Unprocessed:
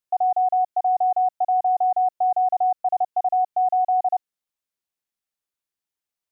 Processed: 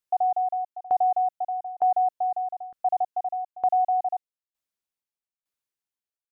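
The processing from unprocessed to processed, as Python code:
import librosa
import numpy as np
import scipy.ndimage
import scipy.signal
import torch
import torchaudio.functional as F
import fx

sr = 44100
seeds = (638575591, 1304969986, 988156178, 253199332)

y = fx.tremolo_shape(x, sr, shape='saw_down', hz=1.1, depth_pct=95)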